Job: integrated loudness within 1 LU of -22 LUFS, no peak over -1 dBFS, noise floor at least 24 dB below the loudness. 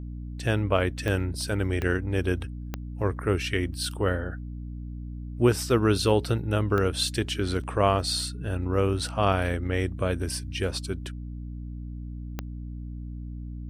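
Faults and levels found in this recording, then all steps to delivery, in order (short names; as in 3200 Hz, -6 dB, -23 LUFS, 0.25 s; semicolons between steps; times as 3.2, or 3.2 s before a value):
clicks 5; hum 60 Hz; harmonics up to 300 Hz; hum level -33 dBFS; loudness -27.0 LUFS; peak -9.0 dBFS; loudness target -22.0 LUFS
-> de-click; de-hum 60 Hz, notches 5; gain +5 dB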